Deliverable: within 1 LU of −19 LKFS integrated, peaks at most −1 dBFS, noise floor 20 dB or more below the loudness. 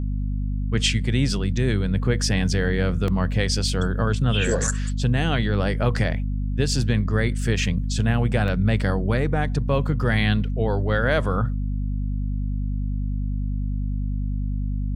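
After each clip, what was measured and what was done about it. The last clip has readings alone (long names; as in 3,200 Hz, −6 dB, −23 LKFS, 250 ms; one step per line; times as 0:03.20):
number of dropouts 2; longest dropout 1.3 ms; mains hum 50 Hz; hum harmonics up to 250 Hz; level of the hum −22 dBFS; integrated loudness −23.5 LKFS; sample peak −6.5 dBFS; target loudness −19.0 LKFS
→ repair the gap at 0:03.08/0:08.48, 1.3 ms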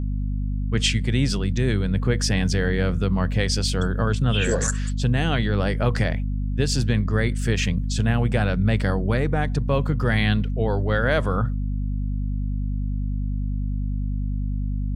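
number of dropouts 0; mains hum 50 Hz; hum harmonics up to 250 Hz; level of the hum −22 dBFS
→ hum removal 50 Hz, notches 5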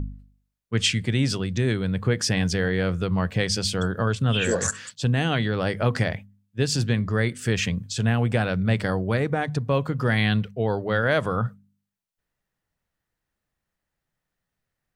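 mains hum none found; integrated loudness −24.5 LKFS; sample peak −8.0 dBFS; target loudness −19.0 LKFS
→ level +5.5 dB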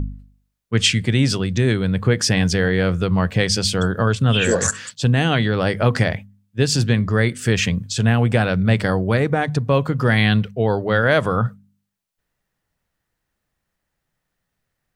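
integrated loudness −19.0 LKFS; sample peak −2.5 dBFS; background noise floor −78 dBFS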